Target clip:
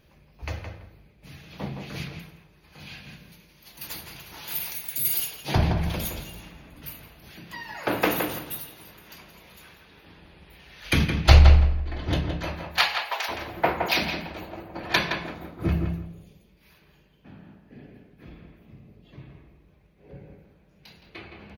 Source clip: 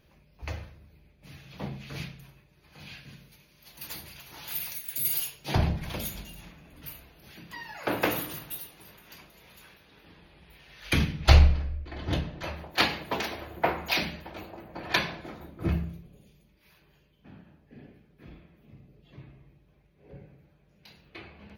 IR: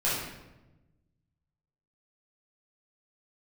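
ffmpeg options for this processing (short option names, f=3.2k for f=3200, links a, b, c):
-filter_complex "[0:a]asplit=3[a][b][c];[a]afade=t=out:st=12.71:d=0.02[d];[b]highpass=f=680:w=0.5412,highpass=f=680:w=1.3066,afade=t=in:st=12.71:d=0.02,afade=t=out:st=13.28:d=0.02[e];[c]afade=t=in:st=13.28:d=0.02[f];[d][e][f]amix=inputs=3:normalize=0,asplit=2[g][h];[h]adelay=167,lowpass=f=2.6k:p=1,volume=-5dB,asplit=2[i][j];[j]adelay=167,lowpass=f=2.6k:p=1,volume=0.22,asplit=2[k][l];[l]adelay=167,lowpass=f=2.6k:p=1,volume=0.22[m];[i][k][m]amix=inputs=3:normalize=0[n];[g][n]amix=inputs=2:normalize=0,volume=3dB"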